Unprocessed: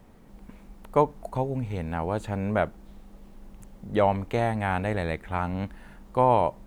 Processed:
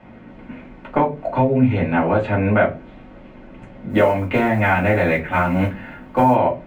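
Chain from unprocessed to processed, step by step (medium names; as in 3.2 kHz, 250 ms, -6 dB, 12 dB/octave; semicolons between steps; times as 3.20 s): high-pass 110 Hz 12 dB/octave; compression 6:1, threshold -24 dBFS, peak gain reduction 10 dB; resonant low-pass 2.4 kHz, resonance Q 1.9; 3.89–6.34 s: modulation noise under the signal 34 dB; reverberation RT60 0.25 s, pre-delay 3 ms, DRR -5.5 dB; trim +3.5 dB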